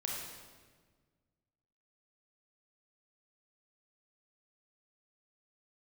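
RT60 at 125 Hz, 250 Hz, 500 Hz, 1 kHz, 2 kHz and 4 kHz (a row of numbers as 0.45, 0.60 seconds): 2.2, 2.0, 1.7, 1.4, 1.3, 1.2 seconds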